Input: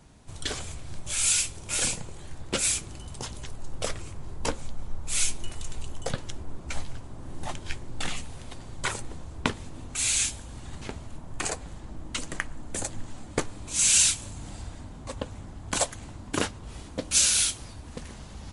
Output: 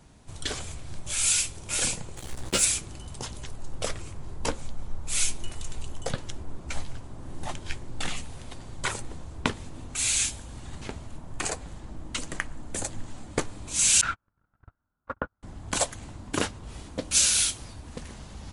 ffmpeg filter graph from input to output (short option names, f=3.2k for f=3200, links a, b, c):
-filter_complex "[0:a]asettb=1/sr,asplit=3[a][b][c];[a]atrim=end=2.174[d];[b]atrim=start=2.17:end=2.65,asetpts=PTS-STARTPTS,afade=t=in:d=0.004:c=qsin,afade=t=out:st=0.476:d=0.004:c=qsin,highshelf=f=4.8k:g=7,acrusher=bits=5:mix=0:aa=0.5,asplit=2[e][f];[f]adelay=16,volume=-5dB[g];[e][g]amix=inputs=2:normalize=0,atrim=end_sample=21168[h];[c]atrim=start=2.646[i];[d][h]acrossfade=d=0.004:c1=hsin:c2=qsin[j];[j][i]acrossfade=d=0.004:c1=qsin:c2=hsin,asettb=1/sr,asplit=3[k][l][m];[k]atrim=end=14.014[n];[l]atrim=start=14.01:end=15.43,asetpts=PTS-STARTPTS,afade=t=in:d=0.004:c=qsin,afade=t=out:st=1.416:d=0.004:c=qsin,lowpass=f=1.4k:t=q:w=11,agate=range=-42dB:threshold=-33dB:ratio=16:release=100:detection=peak[o];[m]atrim=start=15.426[p];[n][o]acrossfade=d=0.004:c1=hsin:c2=qsin[q];[q][p]acrossfade=d=0.004:c1=qsin:c2=hsin"